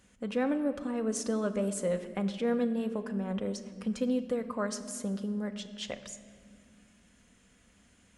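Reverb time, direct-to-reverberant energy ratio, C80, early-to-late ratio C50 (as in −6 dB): 2.0 s, 7.5 dB, 12.5 dB, 11.5 dB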